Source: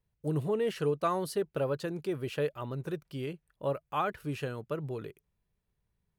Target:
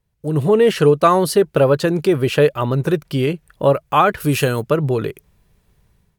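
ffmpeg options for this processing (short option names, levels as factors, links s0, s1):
-filter_complex "[0:a]asplit=2[s0][s1];[s1]acompressor=threshold=0.00501:ratio=6,volume=1[s2];[s0][s2]amix=inputs=2:normalize=0,asplit=3[s3][s4][s5];[s3]afade=t=out:st=4.2:d=0.02[s6];[s4]aemphasis=mode=production:type=50kf,afade=t=in:st=4.2:d=0.02,afade=t=out:st=4.61:d=0.02[s7];[s5]afade=t=in:st=4.61:d=0.02[s8];[s6][s7][s8]amix=inputs=3:normalize=0,dynaudnorm=f=150:g=5:m=5.01,volume=1.33" -ar 48000 -c:a libvorbis -b:a 128k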